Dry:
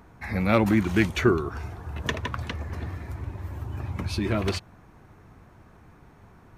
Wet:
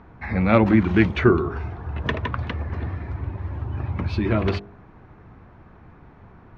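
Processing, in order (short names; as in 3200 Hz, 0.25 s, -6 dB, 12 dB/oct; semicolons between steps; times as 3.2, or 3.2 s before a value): air absorption 290 m; de-hum 50.67 Hz, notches 14; gain +5.5 dB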